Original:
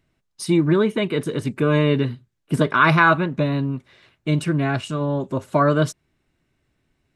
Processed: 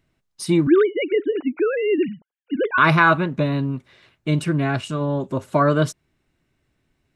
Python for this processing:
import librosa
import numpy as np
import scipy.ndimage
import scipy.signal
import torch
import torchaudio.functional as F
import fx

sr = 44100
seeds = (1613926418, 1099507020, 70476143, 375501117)

y = fx.sine_speech(x, sr, at=(0.67, 2.78))